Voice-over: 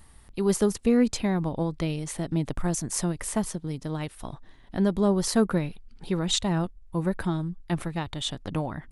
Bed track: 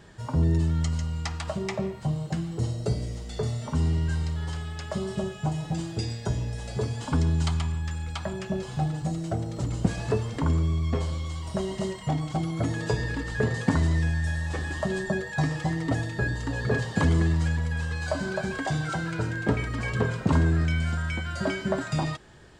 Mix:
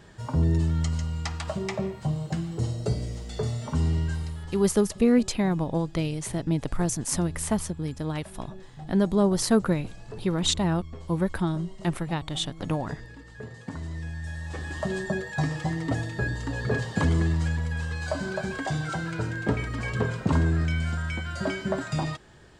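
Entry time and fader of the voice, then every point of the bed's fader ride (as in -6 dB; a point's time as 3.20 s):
4.15 s, +1.0 dB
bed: 4.00 s 0 dB
4.94 s -15 dB
13.58 s -15 dB
14.87 s -1 dB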